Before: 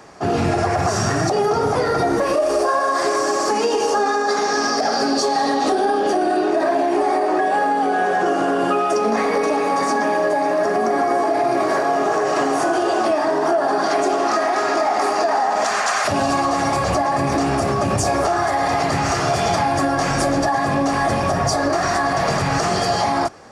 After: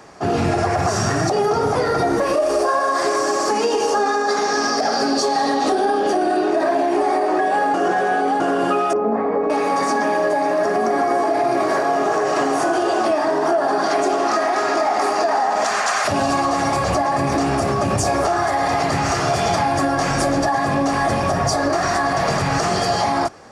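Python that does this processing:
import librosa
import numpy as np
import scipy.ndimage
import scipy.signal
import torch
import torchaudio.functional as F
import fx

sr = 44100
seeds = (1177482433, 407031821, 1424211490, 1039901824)

y = fx.lowpass(x, sr, hz=1000.0, slope=12, at=(8.93, 9.5))
y = fx.edit(y, sr, fx.reverse_span(start_s=7.74, length_s=0.66), tone=tone)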